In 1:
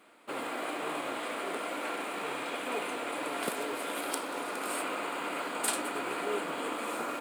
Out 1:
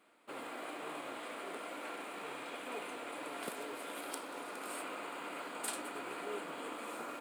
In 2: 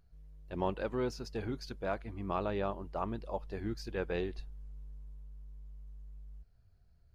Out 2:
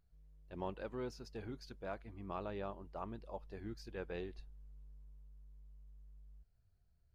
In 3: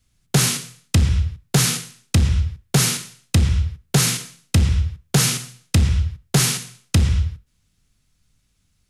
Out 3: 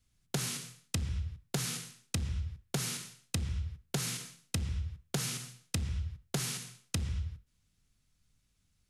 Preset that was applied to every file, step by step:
downward compressor 6 to 1, threshold −23 dBFS
level −8.5 dB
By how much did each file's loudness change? −8.5, −8.5, −17.0 LU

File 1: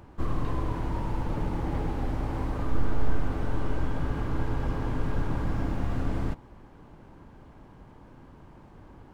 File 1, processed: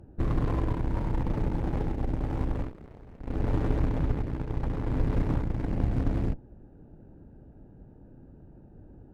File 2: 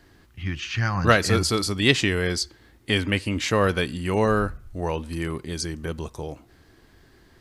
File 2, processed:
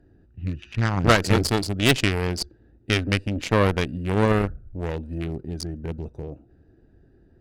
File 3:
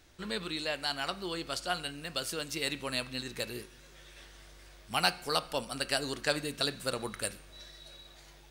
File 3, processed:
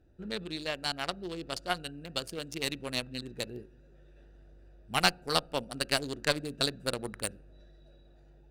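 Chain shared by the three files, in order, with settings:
adaptive Wiener filter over 41 samples
harmonic generator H 2 −13 dB, 5 −26 dB, 6 −36 dB, 8 −14 dB, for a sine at −1 dBFS
level −1 dB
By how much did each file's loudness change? +1.5, 0.0, +0.5 LU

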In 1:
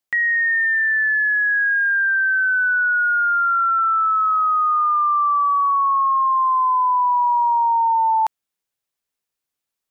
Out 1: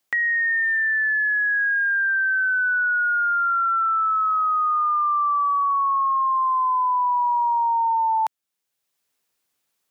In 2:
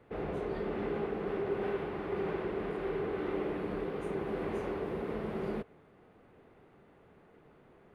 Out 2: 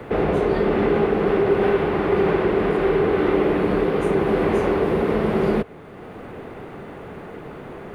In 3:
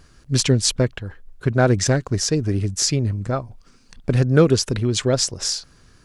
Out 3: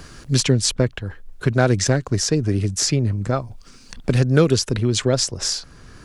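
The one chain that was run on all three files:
multiband upward and downward compressor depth 40%
loudness normalisation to −20 LKFS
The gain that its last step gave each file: −3.5, +16.0, +0.5 decibels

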